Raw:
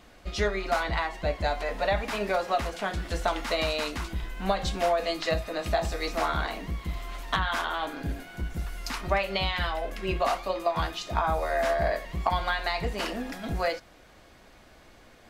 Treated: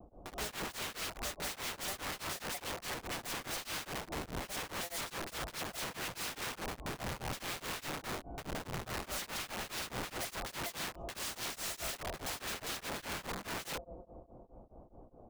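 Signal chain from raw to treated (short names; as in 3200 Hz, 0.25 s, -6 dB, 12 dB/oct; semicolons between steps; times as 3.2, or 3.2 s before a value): inverse Chebyshev low-pass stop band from 1700 Hz, stop band 40 dB; on a send: multi-head echo 76 ms, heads second and third, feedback 59%, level -22.5 dB; on the sum: overloaded stage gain 22 dB; vibrato 0.41 Hz 15 cents; wrapped overs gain 36 dB; beating tremolo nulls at 4.8 Hz; gain +2.5 dB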